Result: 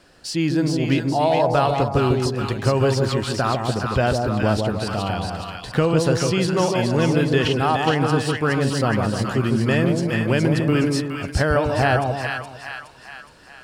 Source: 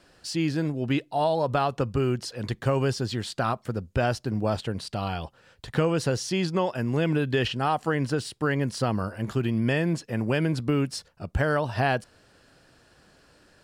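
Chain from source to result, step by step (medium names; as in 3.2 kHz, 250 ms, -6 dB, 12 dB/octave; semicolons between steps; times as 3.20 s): two-band feedback delay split 1 kHz, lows 151 ms, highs 418 ms, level -3 dB; trim +4.5 dB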